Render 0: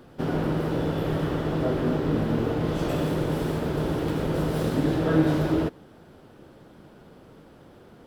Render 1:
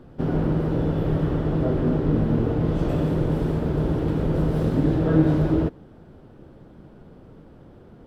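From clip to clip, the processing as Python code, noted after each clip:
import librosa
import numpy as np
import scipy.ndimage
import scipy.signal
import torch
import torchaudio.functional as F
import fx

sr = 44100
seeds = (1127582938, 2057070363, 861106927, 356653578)

y = fx.tilt_eq(x, sr, slope=-2.5)
y = y * librosa.db_to_amplitude(-2.0)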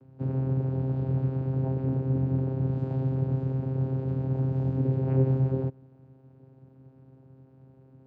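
y = fx.vocoder(x, sr, bands=8, carrier='saw', carrier_hz=132.0)
y = y * librosa.db_to_amplitude(-4.0)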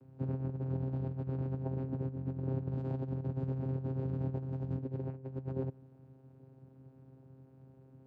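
y = fx.over_compress(x, sr, threshold_db=-29.0, ratio=-0.5)
y = y * librosa.db_to_amplitude(-6.5)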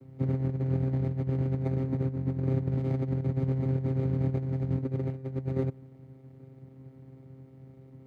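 y = scipy.ndimage.median_filter(x, 41, mode='constant')
y = y * librosa.db_to_amplitude(7.5)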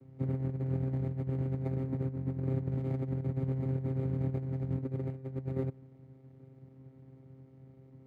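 y = np.interp(np.arange(len(x)), np.arange(len(x))[::4], x[::4])
y = y * librosa.db_to_amplitude(-4.5)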